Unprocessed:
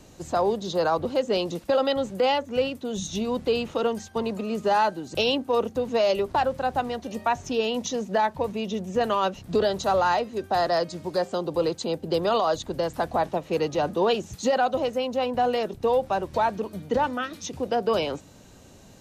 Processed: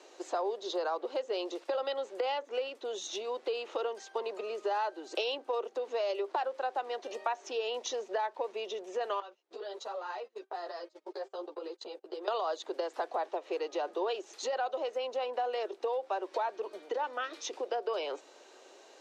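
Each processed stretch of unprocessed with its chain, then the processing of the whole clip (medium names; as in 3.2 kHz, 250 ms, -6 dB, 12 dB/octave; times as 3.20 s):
9.20–12.28 s: gate -33 dBFS, range -27 dB + compression 12:1, threshold -32 dBFS + three-phase chorus
whole clip: low-pass 5.6 kHz 12 dB/octave; compression 5:1, threshold -30 dBFS; elliptic high-pass 360 Hz, stop band 60 dB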